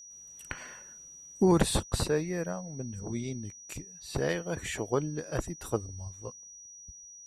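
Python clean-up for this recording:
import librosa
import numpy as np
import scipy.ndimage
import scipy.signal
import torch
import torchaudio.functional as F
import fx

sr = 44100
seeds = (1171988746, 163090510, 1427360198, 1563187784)

y = fx.notch(x, sr, hz=5800.0, q=30.0)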